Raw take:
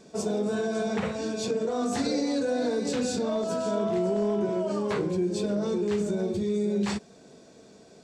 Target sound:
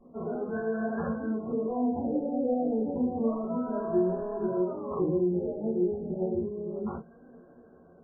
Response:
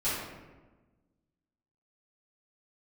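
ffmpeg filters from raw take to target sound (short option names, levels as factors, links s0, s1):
-filter_complex "[0:a]flanger=delay=3.8:depth=7.6:regen=46:speed=0.83:shape=sinusoidal[s0];[1:a]atrim=start_sample=2205,atrim=end_sample=3528,asetrate=79380,aresample=44100[s1];[s0][s1]afir=irnorm=-1:irlink=0,afftfilt=real='re*lt(b*sr/1024,870*pow(1800/870,0.5+0.5*sin(2*PI*0.3*pts/sr)))':imag='im*lt(b*sr/1024,870*pow(1800/870,0.5+0.5*sin(2*PI*0.3*pts/sr)))':win_size=1024:overlap=0.75"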